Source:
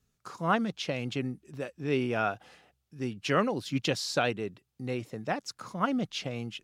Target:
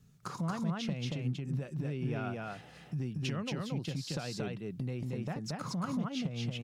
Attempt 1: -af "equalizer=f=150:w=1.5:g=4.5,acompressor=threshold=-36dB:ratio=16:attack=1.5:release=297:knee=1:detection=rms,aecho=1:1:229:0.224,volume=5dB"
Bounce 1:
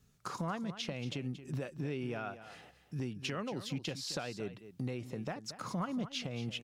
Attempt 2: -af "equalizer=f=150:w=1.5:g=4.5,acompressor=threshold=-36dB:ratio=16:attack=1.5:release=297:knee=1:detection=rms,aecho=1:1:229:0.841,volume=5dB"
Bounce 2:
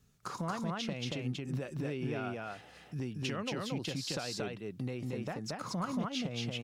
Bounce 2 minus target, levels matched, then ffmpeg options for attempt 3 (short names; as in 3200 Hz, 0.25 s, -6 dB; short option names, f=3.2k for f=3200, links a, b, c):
125 Hz band -3.0 dB
-af "equalizer=f=150:w=1.5:g=15.5,acompressor=threshold=-36dB:ratio=16:attack=1.5:release=297:knee=1:detection=rms,aecho=1:1:229:0.841,volume=5dB"